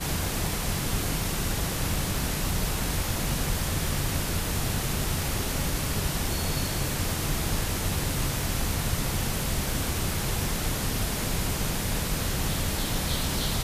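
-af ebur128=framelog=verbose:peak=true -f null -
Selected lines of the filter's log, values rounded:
Integrated loudness:
  I:         -28.1 LUFS
  Threshold: -38.1 LUFS
Loudness range:
  LRA:         0.2 LU
  Threshold: -48.1 LUFS
  LRA low:   -28.2 LUFS
  LRA high:  -28.0 LUFS
True peak:
  Peak:      -13.1 dBFS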